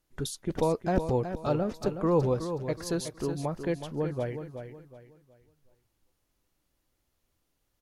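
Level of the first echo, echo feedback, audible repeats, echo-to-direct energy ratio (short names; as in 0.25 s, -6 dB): -9.0 dB, 32%, 3, -8.5 dB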